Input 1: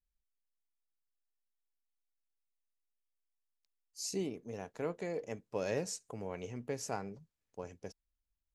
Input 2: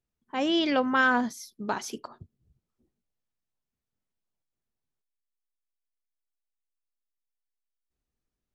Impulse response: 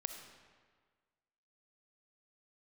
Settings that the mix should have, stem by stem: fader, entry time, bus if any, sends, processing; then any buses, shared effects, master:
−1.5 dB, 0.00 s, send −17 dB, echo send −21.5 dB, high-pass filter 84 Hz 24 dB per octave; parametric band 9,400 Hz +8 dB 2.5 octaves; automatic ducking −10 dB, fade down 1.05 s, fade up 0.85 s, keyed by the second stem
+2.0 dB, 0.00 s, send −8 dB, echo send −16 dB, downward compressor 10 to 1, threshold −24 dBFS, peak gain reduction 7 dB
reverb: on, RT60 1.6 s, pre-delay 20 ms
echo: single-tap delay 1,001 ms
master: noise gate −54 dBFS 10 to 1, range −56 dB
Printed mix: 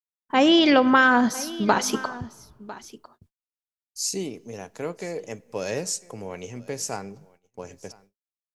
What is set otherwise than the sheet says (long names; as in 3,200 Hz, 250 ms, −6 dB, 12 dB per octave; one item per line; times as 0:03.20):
stem 1 −1.5 dB → +5.0 dB
stem 2 +2.0 dB → +9.0 dB